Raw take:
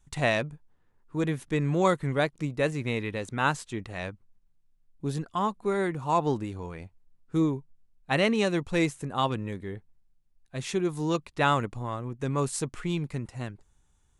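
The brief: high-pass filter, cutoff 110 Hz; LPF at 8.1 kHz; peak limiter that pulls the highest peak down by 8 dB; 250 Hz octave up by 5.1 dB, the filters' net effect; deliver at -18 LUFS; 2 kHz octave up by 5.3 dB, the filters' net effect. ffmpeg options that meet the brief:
-af "highpass=110,lowpass=8100,equalizer=f=250:t=o:g=7.5,equalizer=f=2000:t=o:g=6.5,volume=2.82,alimiter=limit=0.631:level=0:latency=1"

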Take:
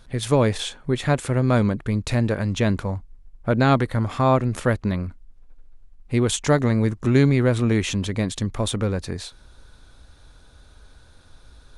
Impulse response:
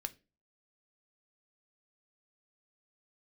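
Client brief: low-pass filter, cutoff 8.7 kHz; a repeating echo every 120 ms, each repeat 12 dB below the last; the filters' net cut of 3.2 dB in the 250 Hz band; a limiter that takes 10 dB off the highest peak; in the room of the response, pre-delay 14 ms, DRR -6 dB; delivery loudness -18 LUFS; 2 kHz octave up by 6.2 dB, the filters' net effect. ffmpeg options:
-filter_complex "[0:a]lowpass=8700,equalizer=f=250:t=o:g=-4,equalizer=f=2000:t=o:g=8,alimiter=limit=0.2:level=0:latency=1,aecho=1:1:120|240|360:0.251|0.0628|0.0157,asplit=2[s0][s1];[1:a]atrim=start_sample=2205,adelay=14[s2];[s1][s2]afir=irnorm=-1:irlink=0,volume=2.51[s3];[s0][s3]amix=inputs=2:normalize=0"

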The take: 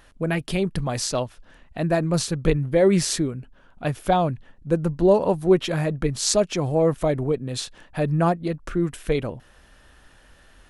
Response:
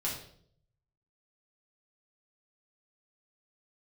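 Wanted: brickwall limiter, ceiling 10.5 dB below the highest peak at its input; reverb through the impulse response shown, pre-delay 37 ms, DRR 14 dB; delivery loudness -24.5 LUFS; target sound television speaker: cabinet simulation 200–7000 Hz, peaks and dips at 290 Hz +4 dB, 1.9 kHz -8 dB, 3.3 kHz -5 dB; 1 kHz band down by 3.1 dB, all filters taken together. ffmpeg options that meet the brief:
-filter_complex "[0:a]equalizer=f=1000:t=o:g=-4.5,alimiter=limit=0.211:level=0:latency=1,asplit=2[s0][s1];[1:a]atrim=start_sample=2205,adelay=37[s2];[s1][s2]afir=irnorm=-1:irlink=0,volume=0.126[s3];[s0][s3]amix=inputs=2:normalize=0,highpass=f=200:w=0.5412,highpass=f=200:w=1.3066,equalizer=f=290:t=q:w=4:g=4,equalizer=f=1900:t=q:w=4:g=-8,equalizer=f=3300:t=q:w=4:g=-5,lowpass=f=7000:w=0.5412,lowpass=f=7000:w=1.3066,volume=1.26"

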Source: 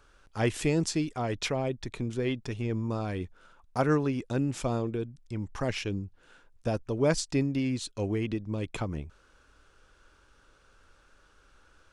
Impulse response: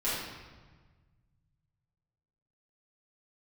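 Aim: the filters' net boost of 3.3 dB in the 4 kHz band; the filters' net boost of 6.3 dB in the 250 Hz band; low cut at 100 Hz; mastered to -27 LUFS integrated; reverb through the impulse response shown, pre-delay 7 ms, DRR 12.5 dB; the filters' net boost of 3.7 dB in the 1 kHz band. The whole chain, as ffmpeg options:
-filter_complex "[0:a]highpass=100,equalizer=f=250:t=o:g=7.5,equalizer=f=1000:t=o:g=4.5,equalizer=f=4000:t=o:g=4,asplit=2[s0][s1];[1:a]atrim=start_sample=2205,adelay=7[s2];[s1][s2]afir=irnorm=-1:irlink=0,volume=0.0891[s3];[s0][s3]amix=inputs=2:normalize=0,volume=0.944"

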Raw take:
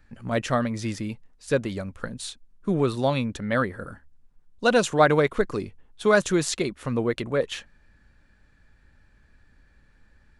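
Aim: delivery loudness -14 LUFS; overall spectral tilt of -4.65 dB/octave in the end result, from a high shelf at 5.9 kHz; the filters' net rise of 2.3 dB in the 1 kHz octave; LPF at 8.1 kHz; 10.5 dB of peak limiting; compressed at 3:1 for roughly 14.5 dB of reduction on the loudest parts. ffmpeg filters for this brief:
-af "lowpass=8100,equalizer=f=1000:t=o:g=3,highshelf=f=5900:g=5,acompressor=threshold=0.0282:ratio=3,volume=13.3,alimiter=limit=0.708:level=0:latency=1"

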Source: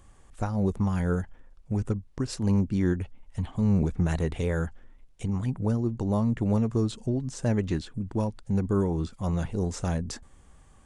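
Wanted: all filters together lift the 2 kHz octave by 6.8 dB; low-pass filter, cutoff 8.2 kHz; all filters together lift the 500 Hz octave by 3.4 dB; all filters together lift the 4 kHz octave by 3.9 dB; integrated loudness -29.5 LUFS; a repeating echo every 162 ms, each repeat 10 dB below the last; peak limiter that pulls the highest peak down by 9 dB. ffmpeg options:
-af "lowpass=8200,equalizer=f=500:t=o:g=4,equalizer=f=2000:t=o:g=8,equalizer=f=4000:t=o:g=3,alimiter=limit=0.0794:level=0:latency=1,aecho=1:1:162|324|486|648:0.316|0.101|0.0324|0.0104,volume=1.19"

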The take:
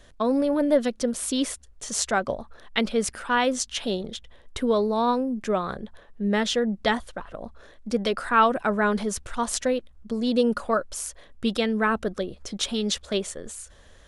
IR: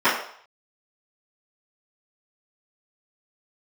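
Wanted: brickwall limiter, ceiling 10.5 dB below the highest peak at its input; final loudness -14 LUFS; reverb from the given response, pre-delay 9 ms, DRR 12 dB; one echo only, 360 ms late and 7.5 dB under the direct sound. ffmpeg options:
-filter_complex "[0:a]alimiter=limit=0.141:level=0:latency=1,aecho=1:1:360:0.422,asplit=2[s0][s1];[1:a]atrim=start_sample=2205,adelay=9[s2];[s1][s2]afir=irnorm=-1:irlink=0,volume=0.0211[s3];[s0][s3]amix=inputs=2:normalize=0,volume=4.73"

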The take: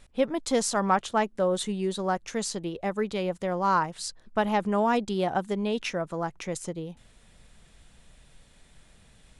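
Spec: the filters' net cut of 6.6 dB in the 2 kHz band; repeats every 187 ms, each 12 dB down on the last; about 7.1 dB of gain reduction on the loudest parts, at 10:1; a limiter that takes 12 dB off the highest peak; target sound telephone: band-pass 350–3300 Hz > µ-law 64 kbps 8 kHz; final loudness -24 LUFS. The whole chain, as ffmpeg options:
-af "equalizer=f=2000:t=o:g=-9,acompressor=threshold=0.0501:ratio=10,alimiter=level_in=1.68:limit=0.0631:level=0:latency=1,volume=0.596,highpass=350,lowpass=3300,aecho=1:1:187|374|561:0.251|0.0628|0.0157,volume=6.68" -ar 8000 -c:a pcm_mulaw

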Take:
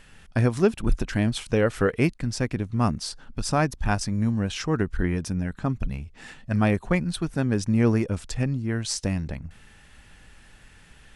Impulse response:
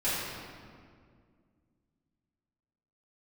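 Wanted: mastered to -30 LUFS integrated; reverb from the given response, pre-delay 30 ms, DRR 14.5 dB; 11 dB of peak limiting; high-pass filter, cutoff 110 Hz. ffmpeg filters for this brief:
-filter_complex "[0:a]highpass=110,alimiter=limit=0.106:level=0:latency=1,asplit=2[s0][s1];[1:a]atrim=start_sample=2205,adelay=30[s2];[s1][s2]afir=irnorm=-1:irlink=0,volume=0.0596[s3];[s0][s3]amix=inputs=2:normalize=0,volume=1.06"

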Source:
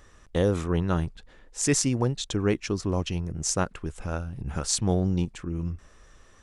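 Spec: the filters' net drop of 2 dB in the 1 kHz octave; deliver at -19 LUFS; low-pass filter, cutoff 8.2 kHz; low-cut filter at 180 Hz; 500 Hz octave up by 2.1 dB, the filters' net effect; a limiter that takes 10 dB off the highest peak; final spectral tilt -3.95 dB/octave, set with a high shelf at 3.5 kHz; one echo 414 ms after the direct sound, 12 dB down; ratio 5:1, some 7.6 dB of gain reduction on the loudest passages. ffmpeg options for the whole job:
-af "highpass=180,lowpass=8200,equalizer=f=500:t=o:g=3.5,equalizer=f=1000:t=o:g=-4.5,highshelf=f=3500:g=5.5,acompressor=threshold=0.0501:ratio=5,alimiter=limit=0.0944:level=0:latency=1,aecho=1:1:414:0.251,volume=5.31"

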